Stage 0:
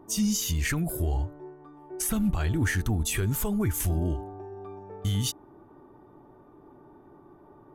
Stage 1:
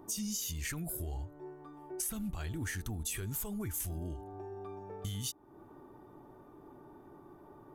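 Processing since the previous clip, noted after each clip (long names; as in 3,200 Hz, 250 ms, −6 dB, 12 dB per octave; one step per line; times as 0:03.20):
high-shelf EQ 3,600 Hz +8.5 dB
downward compressor 2.5 to 1, threshold −39 dBFS, peak gain reduction 13.5 dB
level −2 dB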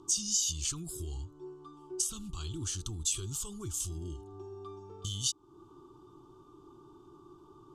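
drawn EQ curve 140 Hz 0 dB, 230 Hz −8 dB, 360 Hz +3 dB, 600 Hz −19 dB, 1,200 Hz +5 dB, 1,900 Hz −24 dB, 3,000 Hz +8 dB, 7,600 Hz +10 dB, 16,000 Hz −22 dB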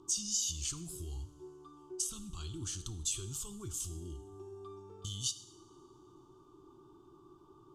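coupled-rooms reverb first 0.77 s, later 3 s, from −20 dB, DRR 11 dB
level −4 dB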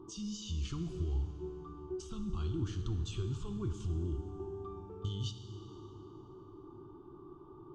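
head-to-tape spacing loss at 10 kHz 40 dB
dense smooth reverb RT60 4.1 s, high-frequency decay 0.6×, DRR 8 dB
level +8 dB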